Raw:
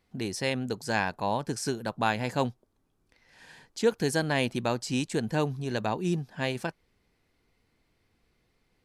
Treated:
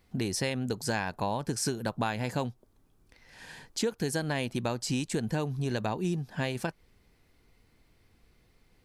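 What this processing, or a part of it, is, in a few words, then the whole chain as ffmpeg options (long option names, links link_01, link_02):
ASMR close-microphone chain: -af "lowshelf=frequency=110:gain=6.5,acompressor=threshold=-31dB:ratio=6,highshelf=frequency=9900:gain=5.5,volume=4dB"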